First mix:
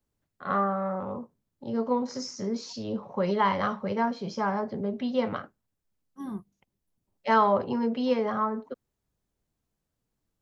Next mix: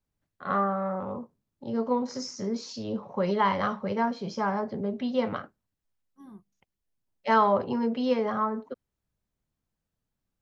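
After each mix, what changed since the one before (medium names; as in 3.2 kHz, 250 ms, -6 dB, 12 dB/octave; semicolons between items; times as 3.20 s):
second voice -12.0 dB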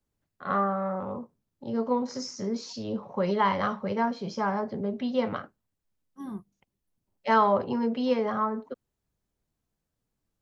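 second voice +10.5 dB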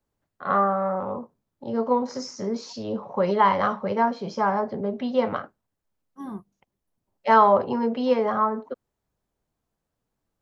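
master: add peaking EQ 790 Hz +6.5 dB 2.3 oct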